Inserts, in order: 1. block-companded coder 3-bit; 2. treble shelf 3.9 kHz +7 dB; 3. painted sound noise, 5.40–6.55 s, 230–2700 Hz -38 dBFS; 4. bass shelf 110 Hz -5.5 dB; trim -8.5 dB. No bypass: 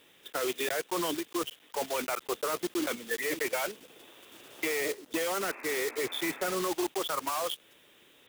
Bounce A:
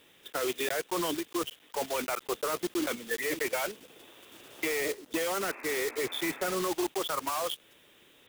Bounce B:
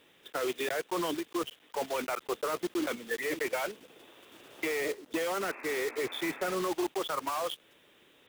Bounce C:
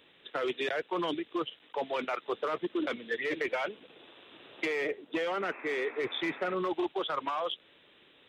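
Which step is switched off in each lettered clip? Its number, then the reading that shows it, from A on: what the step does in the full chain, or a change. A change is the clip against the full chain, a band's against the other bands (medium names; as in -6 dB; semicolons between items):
4, 125 Hz band +2.0 dB; 2, 8 kHz band -5.5 dB; 1, distortion -12 dB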